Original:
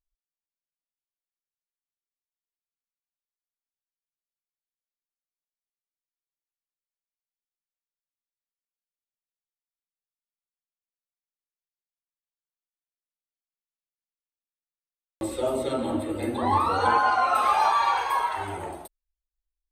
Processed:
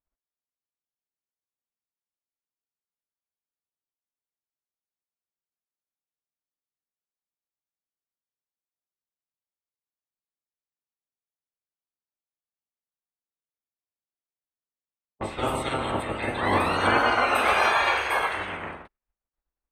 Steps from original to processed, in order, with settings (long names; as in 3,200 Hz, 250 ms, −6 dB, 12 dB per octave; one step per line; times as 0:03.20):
ceiling on every frequency bin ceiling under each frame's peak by 21 dB
low-pass that shuts in the quiet parts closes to 1,100 Hz, open at −22 dBFS
high shelf with overshoot 3,300 Hz −6.5 dB, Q 1.5